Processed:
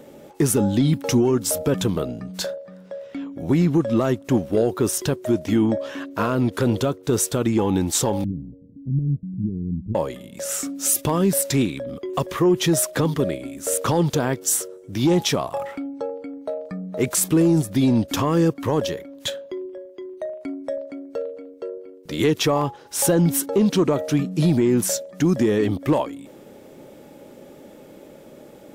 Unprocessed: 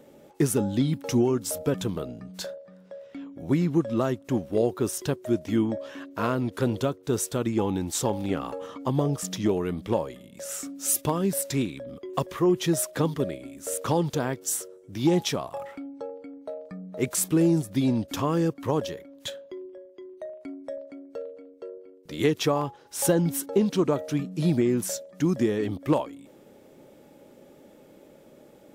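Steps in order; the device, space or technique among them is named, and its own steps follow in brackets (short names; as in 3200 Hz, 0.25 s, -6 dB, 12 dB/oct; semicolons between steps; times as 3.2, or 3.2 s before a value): soft clipper into limiter (soft clip -11.5 dBFS, distortion -24 dB; limiter -18.5 dBFS, peak gain reduction 5.5 dB); 8.24–9.95 inverse Chebyshev low-pass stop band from 1300 Hz, stop band 80 dB; gain +8 dB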